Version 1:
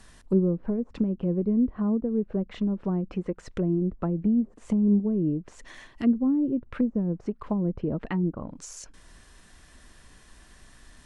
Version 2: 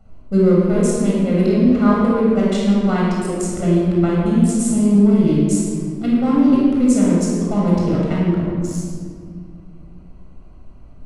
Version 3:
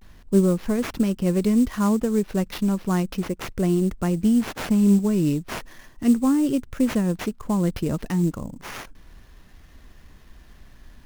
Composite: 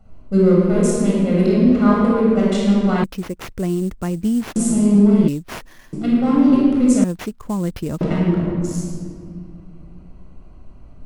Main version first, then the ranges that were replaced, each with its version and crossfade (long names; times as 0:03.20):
2
0:03.04–0:04.56: punch in from 3
0:05.28–0:05.93: punch in from 3
0:07.04–0:08.01: punch in from 3
not used: 1